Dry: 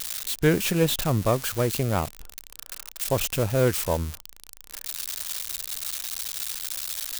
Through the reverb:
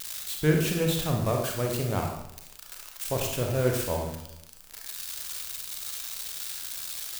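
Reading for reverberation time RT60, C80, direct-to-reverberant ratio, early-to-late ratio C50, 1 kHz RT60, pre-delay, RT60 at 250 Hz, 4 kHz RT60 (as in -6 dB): 0.80 s, 7.0 dB, 1.0 dB, 3.5 dB, 0.80 s, 31 ms, 0.80 s, 0.65 s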